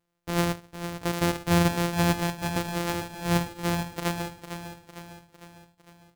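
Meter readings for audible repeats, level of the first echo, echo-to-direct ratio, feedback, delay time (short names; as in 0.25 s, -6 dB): 5, -9.5 dB, -8.0 dB, 53%, 0.454 s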